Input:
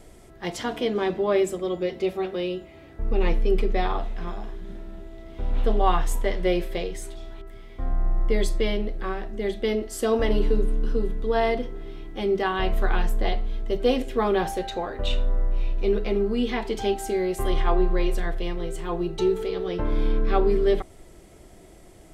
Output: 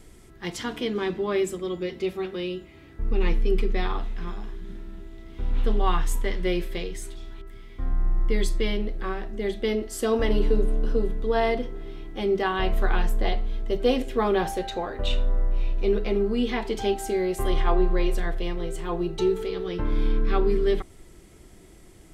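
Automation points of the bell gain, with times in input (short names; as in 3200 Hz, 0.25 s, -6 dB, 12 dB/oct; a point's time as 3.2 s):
bell 640 Hz 0.76 oct
8.44 s -10.5 dB
9 s -3 dB
10.34 s -3 dB
10.77 s +8.5 dB
11.35 s -1 dB
19.05 s -1 dB
19.76 s -9 dB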